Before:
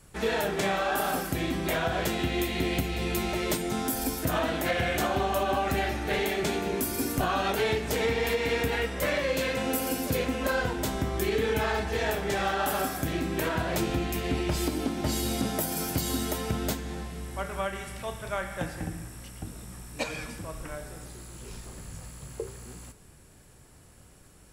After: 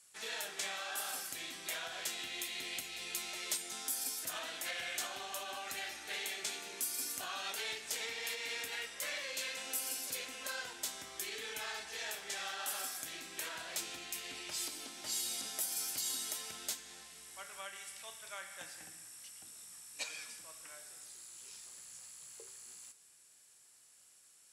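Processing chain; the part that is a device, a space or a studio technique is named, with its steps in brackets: piezo pickup straight into a mixer (low-pass 8.4 kHz 12 dB/octave; differentiator); trim +1 dB

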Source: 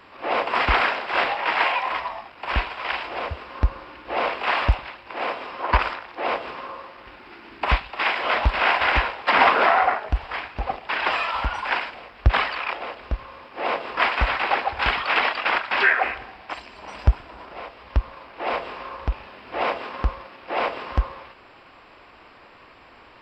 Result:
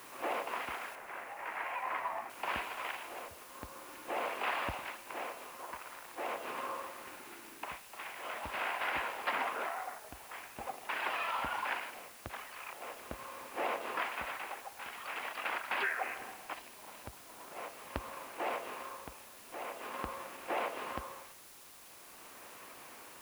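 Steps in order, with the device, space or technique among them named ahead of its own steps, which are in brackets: medium wave at night (band-pass 170–3700 Hz; compression, threshold -28 dBFS, peak gain reduction 15.5 dB; tremolo 0.44 Hz, depth 72%; whistle 10 kHz -60 dBFS; white noise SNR 15 dB); 0.95–2.30 s: resonant high shelf 2.6 kHz -6.5 dB, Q 1.5; trim -4 dB

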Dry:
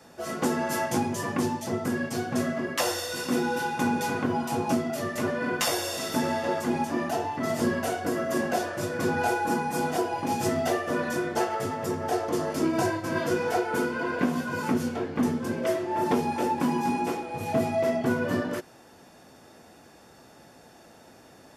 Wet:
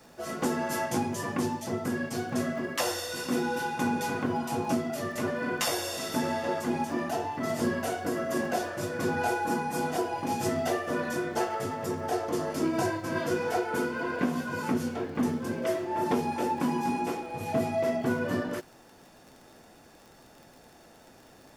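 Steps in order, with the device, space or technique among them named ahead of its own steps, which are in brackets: vinyl LP (crackle 39 per s -40 dBFS; pink noise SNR 36 dB); trim -2.5 dB

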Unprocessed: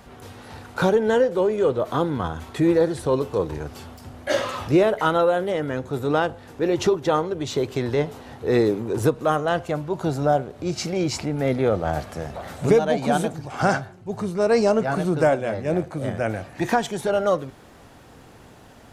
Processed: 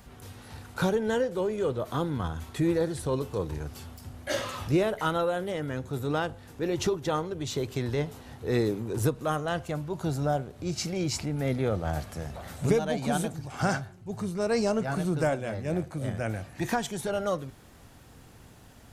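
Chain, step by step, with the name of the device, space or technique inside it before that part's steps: smiley-face EQ (bass shelf 170 Hz +6 dB; peaking EQ 540 Hz -4 dB 2.5 oct; treble shelf 7.3 kHz +8 dB); trim -5.5 dB

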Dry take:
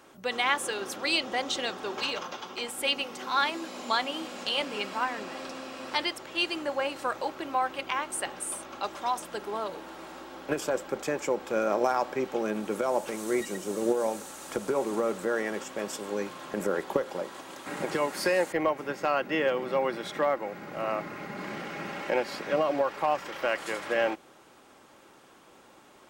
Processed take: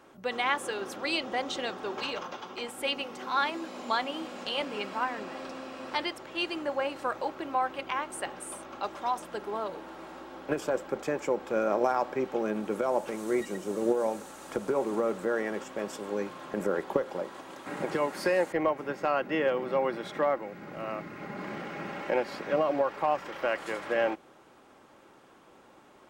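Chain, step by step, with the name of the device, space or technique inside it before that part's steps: 20.36–21.22 s: dynamic bell 770 Hz, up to -6 dB, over -43 dBFS, Q 0.71; behind a face mask (treble shelf 2.8 kHz -8 dB)

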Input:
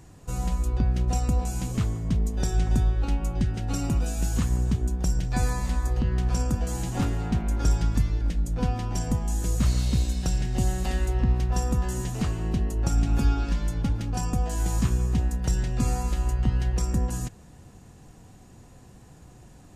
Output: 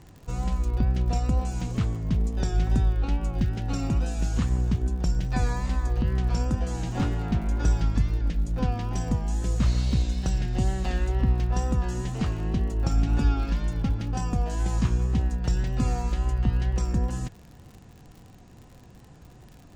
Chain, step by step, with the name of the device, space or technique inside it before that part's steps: lo-fi chain (low-pass 5.4 kHz 12 dB/octave; wow and flutter 47 cents; crackle 70 per s -40 dBFS)

